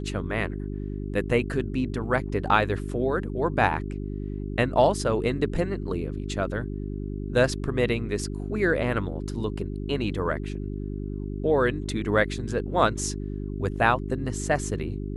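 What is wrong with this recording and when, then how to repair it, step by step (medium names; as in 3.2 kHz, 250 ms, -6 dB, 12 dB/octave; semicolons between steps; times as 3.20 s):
hum 50 Hz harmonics 8 -32 dBFS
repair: de-hum 50 Hz, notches 8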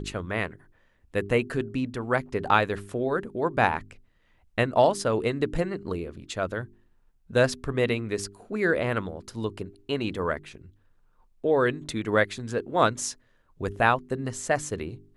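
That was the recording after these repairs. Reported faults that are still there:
nothing left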